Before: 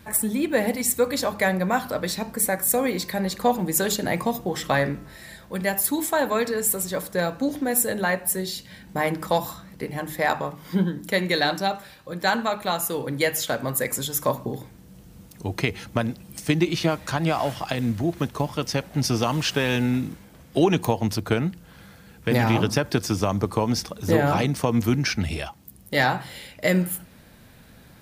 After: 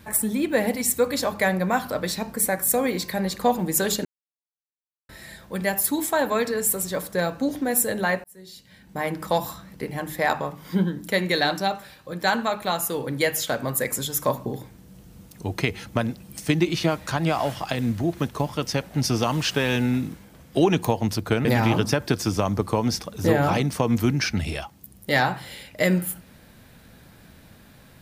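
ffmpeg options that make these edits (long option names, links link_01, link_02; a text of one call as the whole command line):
ffmpeg -i in.wav -filter_complex "[0:a]asplit=5[link_01][link_02][link_03][link_04][link_05];[link_01]atrim=end=4.05,asetpts=PTS-STARTPTS,afade=type=out:start_time=4.046:duration=0.004:curve=hsin[link_06];[link_02]atrim=start=4.05:end=5.09,asetpts=PTS-STARTPTS,volume=0[link_07];[link_03]atrim=start=5.09:end=8.24,asetpts=PTS-STARTPTS,afade=type=in:duration=0.004:curve=hsin,afade=type=out:start_time=3.146:duration=0.004:curve=hsin[link_08];[link_04]atrim=start=8.24:end=21.452,asetpts=PTS-STARTPTS,afade=type=in:duration=1.18[link_09];[link_05]atrim=start=22.288[link_10];[link_06][link_07][link_08][link_09]concat=n=4:v=0:a=1[link_11];[link_11][link_10]acrossfade=duration=0.004:curve1=hsin:curve2=hsin" out.wav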